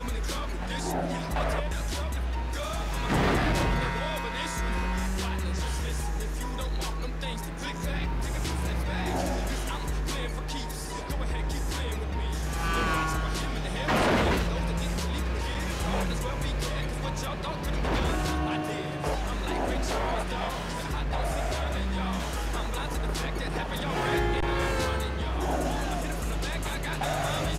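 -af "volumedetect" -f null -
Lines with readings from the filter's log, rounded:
mean_volume: -28.8 dB
max_volume: -18.8 dB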